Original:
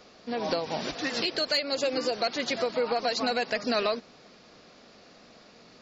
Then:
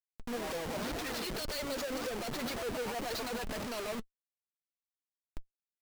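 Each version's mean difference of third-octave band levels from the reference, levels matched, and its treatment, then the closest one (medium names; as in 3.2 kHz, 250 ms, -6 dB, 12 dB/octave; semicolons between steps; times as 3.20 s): 12.0 dB: band-stop 2.6 kHz, Q 24; in parallel at +1 dB: compression 12:1, threshold -36 dBFS, peak gain reduction 14.5 dB; on the sum: Schmitt trigger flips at -34 dBFS; flange 1.9 Hz, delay 1.5 ms, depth 3.9 ms, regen +52%; trim -4.5 dB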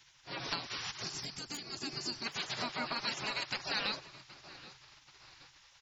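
8.0 dB: feedback delay 774 ms, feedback 36%, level -19 dB; spectral gate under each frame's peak -15 dB weak; peaking EQ 130 Hz +9 dB 0.27 oct; time-frequency box 1.03–2.26 s, 410–4200 Hz -9 dB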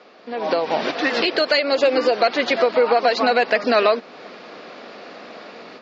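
4.0 dB: low-pass 2.9 kHz 12 dB/octave; in parallel at +2 dB: compression, threshold -41 dBFS, peak gain reduction 16.5 dB; on the sum: high-pass 300 Hz 12 dB/octave; level rider gain up to 10.5 dB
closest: third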